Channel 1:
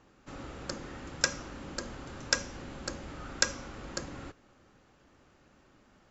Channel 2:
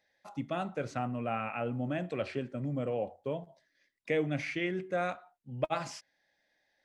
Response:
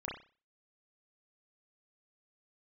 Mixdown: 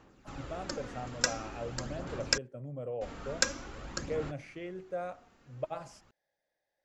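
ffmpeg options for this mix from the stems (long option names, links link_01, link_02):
-filter_complex "[0:a]aphaser=in_gain=1:out_gain=1:delay=4.4:decay=0.4:speed=0.47:type=sinusoidal,volume=-1.5dB,asplit=3[link_01][link_02][link_03];[link_01]atrim=end=2.38,asetpts=PTS-STARTPTS,afade=type=out:start_time=2.376:duration=0.004:curve=hsin[link_04];[link_02]atrim=start=2.38:end=3.01,asetpts=PTS-STARTPTS,volume=0[link_05];[link_03]atrim=start=3.01,asetpts=PTS-STARTPTS,afade=type=in:duration=0.004:curve=hsin[link_06];[link_04][link_05][link_06]concat=n=3:v=0:a=1[link_07];[1:a]equalizer=frequency=125:width_type=o:width=1:gain=3,equalizer=frequency=250:width_type=o:width=1:gain=-7,equalizer=frequency=500:width_type=o:width=1:gain=6,equalizer=frequency=2000:width_type=o:width=1:gain=-6,equalizer=frequency=4000:width_type=o:width=1:gain=-6,volume=-7.5dB[link_08];[link_07][link_08]amix=inputs=2:normalize=0"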